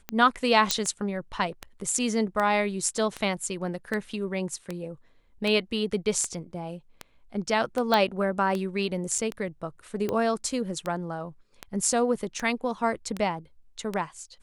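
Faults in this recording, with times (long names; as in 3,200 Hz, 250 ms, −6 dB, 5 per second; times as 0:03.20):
scratch tick 78 rpm −16 dBFS
0:00.71: click −5 dBFS
0:07.94: click −11 dBFS
0:09.18: drop-out 4.6 ms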